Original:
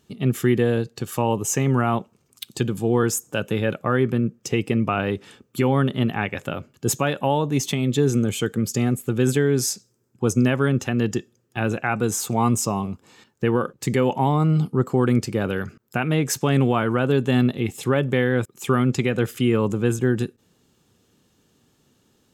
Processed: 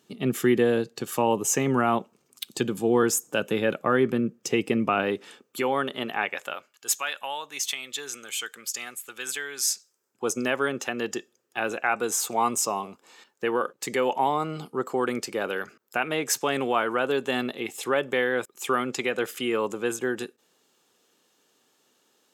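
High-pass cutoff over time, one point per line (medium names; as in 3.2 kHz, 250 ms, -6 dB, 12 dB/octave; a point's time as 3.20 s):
4.95 s 230 Hz
5.67 s 490 Hz
6.22 s 490 Hz
6.88 s 1.4 kHz
9.66 s 1.4 kHz
10.28 s 470 Hz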